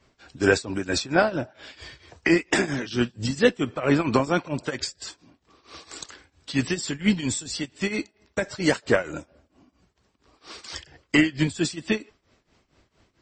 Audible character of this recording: tremolo triangle 4.4 Hz, depth 90%; MP3

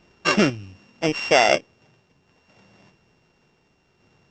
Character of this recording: a buzz of ramps at a fixed pitch in blocks of 16 samples; random-step tremolo 2 Hz; µ-law

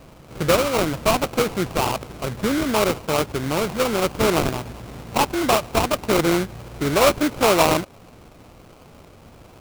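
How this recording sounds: aliases and images of a low sample rate 1.8 kHz, jitter 20%

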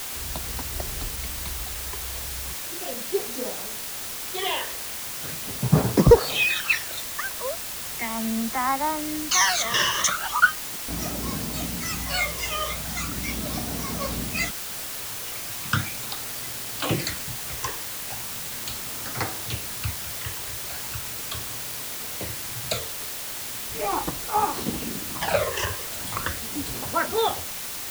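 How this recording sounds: phasing stages 12, 0.38 Hz, lowest notch 230–3200 Hz; a quantiser's noise floor 6-bit, dither triangular

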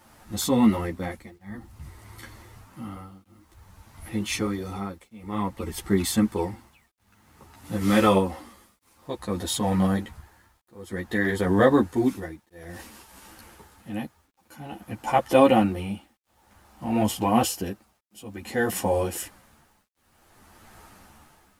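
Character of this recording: tremolo triangle 0.54 Hz, depth 100%; a quantiser's noise floor 12-bit, dither none; a shimmering, thickened sound

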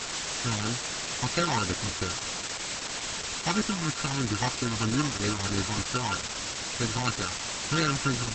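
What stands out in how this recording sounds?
a buzz of ramps at a fixed pitch in blocks of 32 samples; phasing stages 12, 3.1 Hz, lowest notch 440–1000 Hz; a quantiser's noise floor 6-bit, dither triangular; Opus

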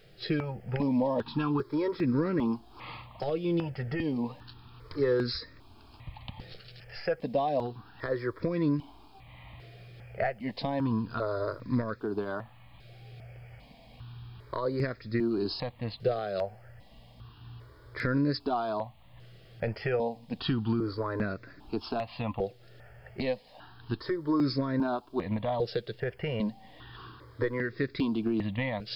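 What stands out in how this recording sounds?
a quantiser's noise floor 12-bit, dither none; notches that jump at a steady rate 2.5 Hz 260–3000 Hz

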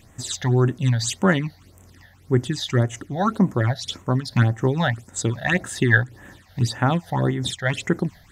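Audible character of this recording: phasing stages 8, 1.8 Hz, lowest notch 320–4600 Hz; random flutter of the level

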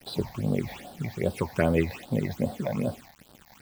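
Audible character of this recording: a quantiser's noise floor 8-bit, dither none; phasing stages 8, 2.5 Hz, lowest notch 360–2200 Hz

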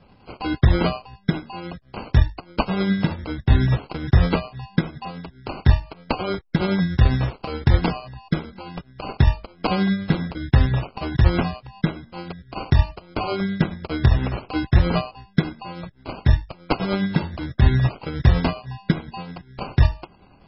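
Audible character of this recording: aliases and images of a low sample rate 1.8 kHz, jitter 0%; tremolo triangle 9.7 Hz, depth 40%; MP3

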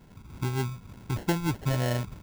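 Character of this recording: phasing stages 8, 3.3 Hz, lowest notch 500–1400 Hz; aliases and images of a low sample rate 1.2 kHz, jitter 0%; random flutter of the level

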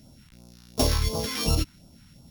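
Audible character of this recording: a buzz of ramps at a fixed pitch in blocks of 8 samples; phasing stages 2, 2.8 Hz, lowest notch 520–1800 Hz

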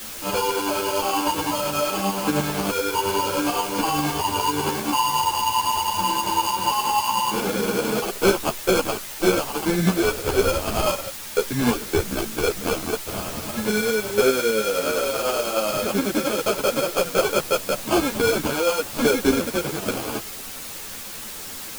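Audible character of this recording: aliases and images of a low sample rate 1.9 kHz, jitter 0%; tremolo saw up 10 Hz, depth 55%; a quantiser's noise floor 6-bit, dither triangular; a shimmering, thickened sound

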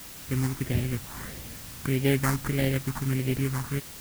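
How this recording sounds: aliases and images of a low sample rate 2.6 kHz, jitter 20%; phasing stages 4, 1.6 Hz, lowest notch 510–1100 Hz; a quantiser's noise floor 8-bit, dither triangular

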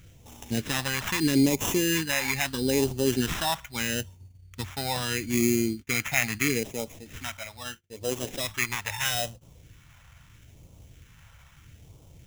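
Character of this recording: aliases and images of a low sample rate 4.5 kHz, jitter 0%; phasing stages 2, 0.77 Hz, lowest notch 350–1600 Hz

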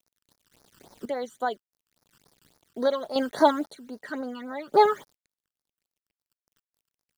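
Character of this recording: a quantiser's noise floor 10-bit, dither none; phasing stages 12, 3.6 Hz, lowest notch 660–3000 Hz; random-step tremolo 1.9 Hz, depth 85%

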